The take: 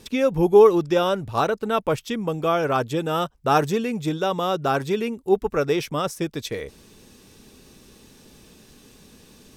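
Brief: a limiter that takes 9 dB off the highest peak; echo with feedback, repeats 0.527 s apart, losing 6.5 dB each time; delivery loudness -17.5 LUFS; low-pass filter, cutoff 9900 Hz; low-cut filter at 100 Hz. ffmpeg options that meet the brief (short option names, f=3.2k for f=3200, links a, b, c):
-af "highpass=100,lowpass=9.9k,alimiter=limit=-13.5dB:level=0:latency=1,aecho=1:1:527|1054|1581|2108|2635|3162:0.473|0.222|0.105|0.0491|0.0231|0.0109,volume=6.5dB"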